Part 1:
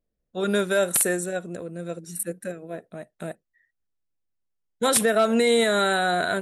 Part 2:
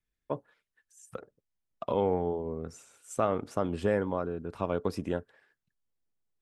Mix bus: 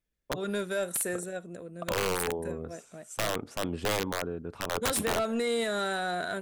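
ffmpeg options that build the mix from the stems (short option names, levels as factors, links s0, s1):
-filter_complex "[0:a]asoftclip=type=tanh:threshold=0.211,volume=0.398[s0];[1:a]volume=0.944[s1];[s0][s1]amix=inputs=2:normalize=0,aeval=exprs='(mod(11.2*val(0)+1,2)-1)/11.2':c=same"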